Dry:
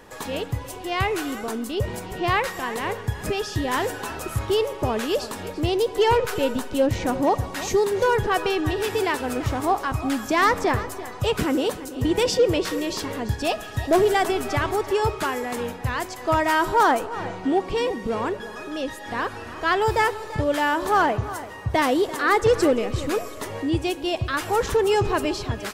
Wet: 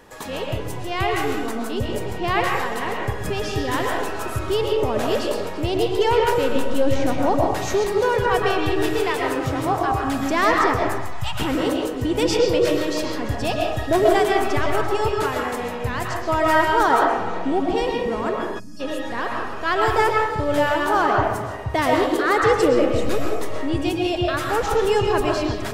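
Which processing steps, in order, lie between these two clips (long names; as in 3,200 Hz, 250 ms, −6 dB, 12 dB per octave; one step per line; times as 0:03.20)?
0:08.96–0:09.88: frequency shifter +17 Hz
0:10.74–0:11.40: elliptic band-stop filter 180–710 Hz
convolution reverb RT60 0.75 s, pre-delay 85 ms, DRR −0.5 dB
0:18.59–0:18.80: gain on a spectral selection 280–4,300 Hz −24 dB
level −1 dB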